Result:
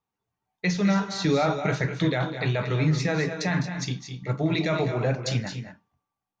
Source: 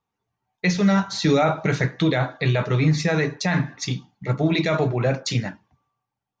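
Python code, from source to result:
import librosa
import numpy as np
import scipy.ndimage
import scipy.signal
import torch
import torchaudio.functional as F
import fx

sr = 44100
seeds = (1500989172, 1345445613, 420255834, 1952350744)

y = fx.echo_multitap(x, sr, ms=(45, 205, 228), db=(-18.0, -12.0, -10.0))
y = F.gain(torch.from_numpy(y), -4.5).numpy()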